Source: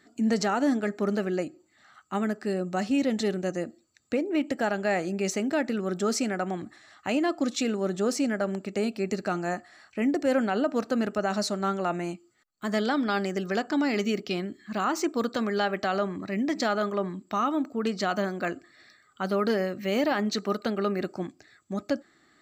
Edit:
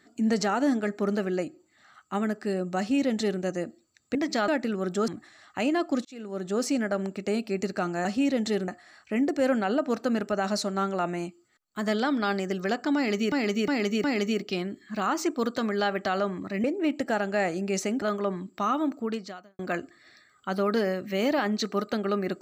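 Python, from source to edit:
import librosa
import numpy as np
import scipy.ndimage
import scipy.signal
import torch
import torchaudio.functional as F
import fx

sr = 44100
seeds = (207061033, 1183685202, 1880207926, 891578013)

y = fx.edit(x, sr, fx.duplicate(start_s=2.78, length_s=0.63, to_s=9.54),
    fx.swap(start_s=4.15, length_s=1.38, other_s=16.42, other_length_s=0.33),
    fx.cut(start_s=6.13, length_s=0.44),
    fx.fade_in_span(start_s=7.54, length_s=0.59),
    fx.repeat(start_s=13.82, length_s=0.36, count=4),
    fx.fade_out_span(start_s=17.76, length_s=0.56, curve='qua'), tone=tone)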